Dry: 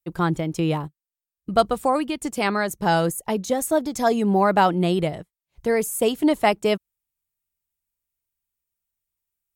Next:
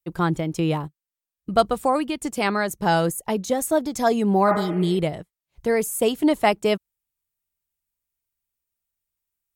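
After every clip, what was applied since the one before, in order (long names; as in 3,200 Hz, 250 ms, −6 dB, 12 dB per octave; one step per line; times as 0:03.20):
healed spectral selection 0:04.51–0:04.95, 420–3,000 Hz both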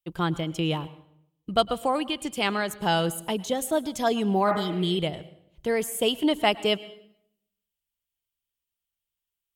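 parametric band 3,100 Hz +11.5 dB 0.46 octaves
on a send at −18 dB: convolution reverb RT60 0.70 s, pre-delay 98 ms
on the sum: level −4.5 dB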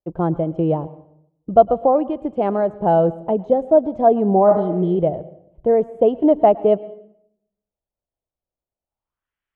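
low-pass filter sweep 640 Hz → 1,800 Hz, 0:08.82–0:09.33
level +5.5 dB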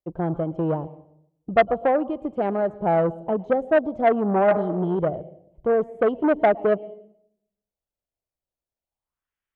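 saturating transformer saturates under 930 Hz
level −3.5 dB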